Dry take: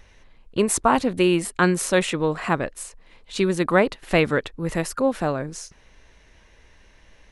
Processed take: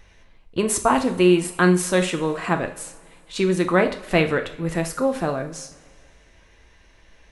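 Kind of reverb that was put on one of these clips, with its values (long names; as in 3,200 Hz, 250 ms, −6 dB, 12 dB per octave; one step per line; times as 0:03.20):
coupled-rooms reverb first 0.44 s, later 2.1 s, from −18 dB, DRR 5 dB
level −1 dB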